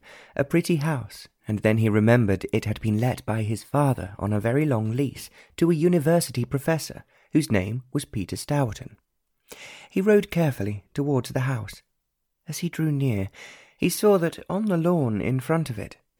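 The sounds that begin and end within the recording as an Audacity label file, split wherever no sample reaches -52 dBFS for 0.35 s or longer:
9.480000	11.810000	sound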